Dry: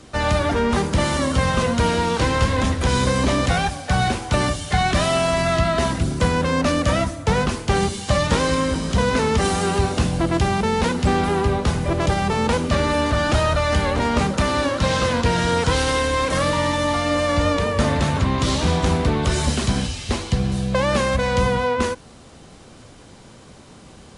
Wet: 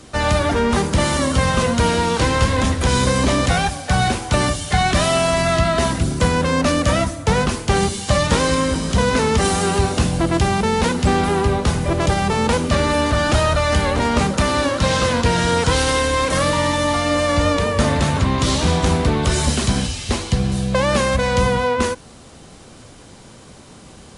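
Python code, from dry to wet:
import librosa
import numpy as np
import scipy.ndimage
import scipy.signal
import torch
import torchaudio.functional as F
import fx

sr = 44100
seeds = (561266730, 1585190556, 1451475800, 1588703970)

y = fx.high_shelf(x, sr, hz=8000.0, db=6.5)
y = y * librosa.db_to_amplitude(2.0)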